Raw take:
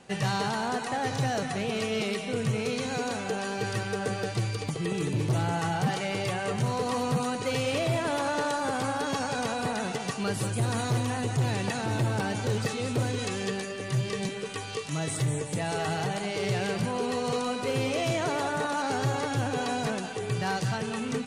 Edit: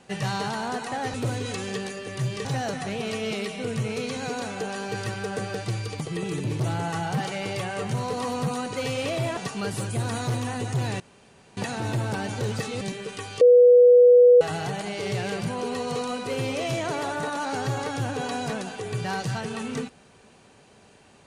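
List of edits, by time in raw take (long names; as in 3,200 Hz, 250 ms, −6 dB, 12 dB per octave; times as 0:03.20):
0:08.06–0:10.00: remove
0:11.63: splice in room tone 0.57 s
0:12.87–0:14.18: move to 0:01.14
0:14.78–0:15.78: beep over 490 Hz −10 dBFS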